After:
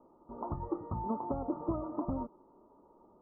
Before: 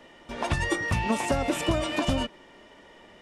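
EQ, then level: rippled Chebyshev low-pass 1.3 kHz, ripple 6 dB; -6.0 dB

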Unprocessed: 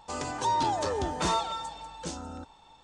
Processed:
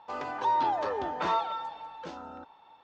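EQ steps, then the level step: band-pass filter 1.2 kHz, Q 0.51; distance through air 180 m; +2.0 dB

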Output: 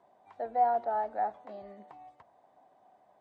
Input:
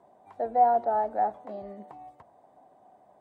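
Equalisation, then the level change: distance through air 95 m; tilt shelf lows -6 dB, about 1.1 kHz; -2.5 dB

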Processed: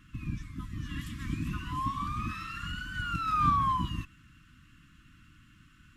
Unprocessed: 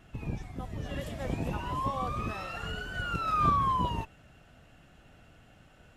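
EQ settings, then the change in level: brick-wall FIR band-stop 340–1000 Hz; 0.0 dB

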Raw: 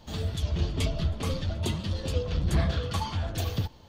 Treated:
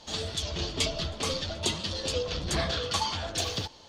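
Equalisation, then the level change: low-pass 5.4 kHz 12 dB/octave; tone controls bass -12 dB, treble +14 dB; +3.0 dB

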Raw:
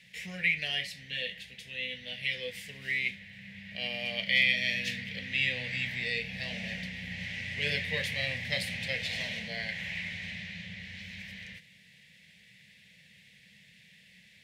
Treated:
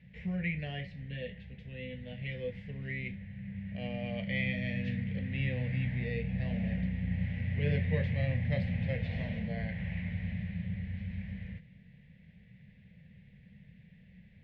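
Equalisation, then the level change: Bessel low-pass 2 kHz, order 2; tilt EQ -4.5 dB/octave; -2.0 dB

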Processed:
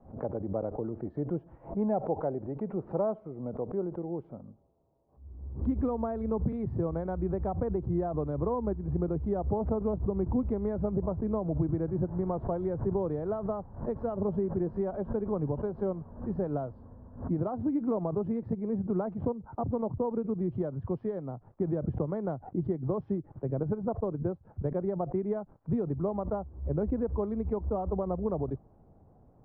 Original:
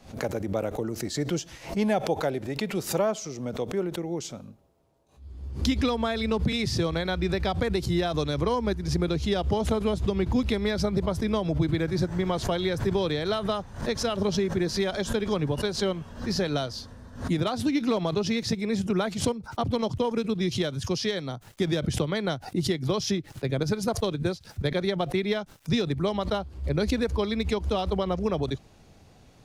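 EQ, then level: low-pass 1 kHz 24 dB/octave; -4.0 dB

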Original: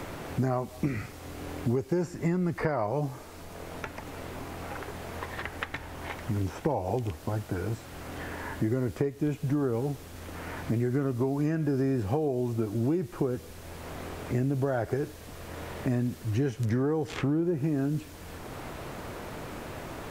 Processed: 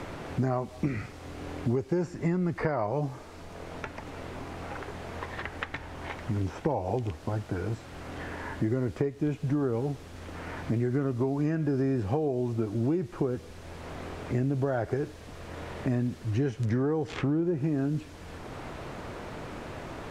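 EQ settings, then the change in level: distance through air 54 m; 0.0 dB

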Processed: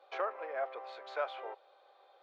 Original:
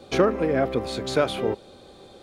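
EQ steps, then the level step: inverse Chebyshev high-pass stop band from 200 Hz, stop band 60 dB; tape spacing loss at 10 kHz 42 dB; -4.0 dB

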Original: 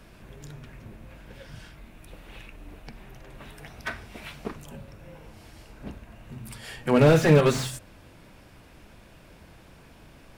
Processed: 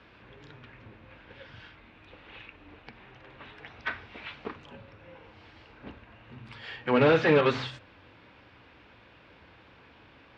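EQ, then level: cabinet simulation 110–3800 Hz, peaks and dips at 150 Hz -10 dB, 210 Hz -5 dB, 370 Hz -4 dB, 650 Hz -7 dB; peaking EQ 200 Hz -3 dB 1.4 oct; +1.0 dB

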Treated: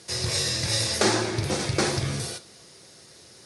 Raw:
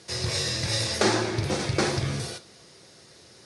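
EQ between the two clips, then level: treble shelf 9.3 kHz +11.5 dB; 0.0 dB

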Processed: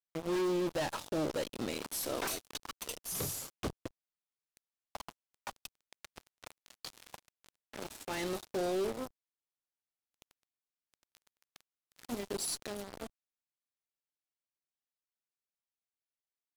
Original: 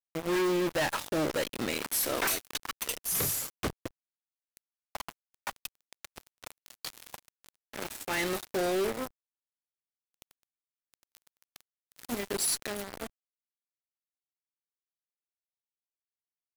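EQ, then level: dynamic bell 1.9 kHz, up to -7 dB, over -49 dBFS, Q 1.1; treble shelf 11 kHz -11 dB; -3.5 dB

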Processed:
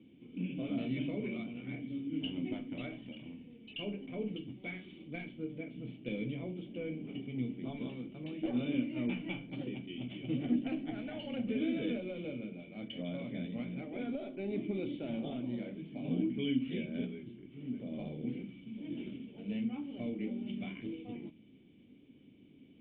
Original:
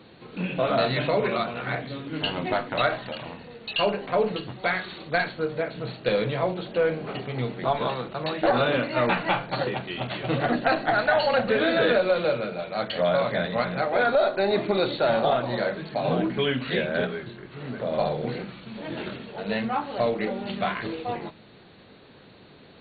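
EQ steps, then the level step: cascade formant filter i; 0.0 dB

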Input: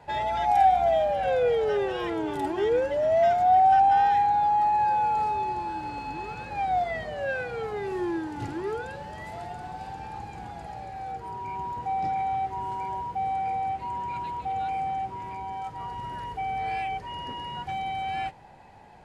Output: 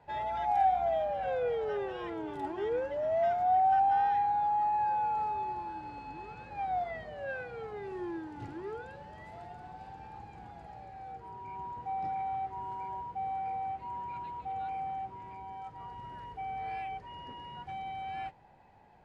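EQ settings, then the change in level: low-pass 3.2 kHz 6 dB/octave; dynamic bell 1.1 kHz, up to +4 dB, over -34 dBFS, Q 1.2; -9.0 dB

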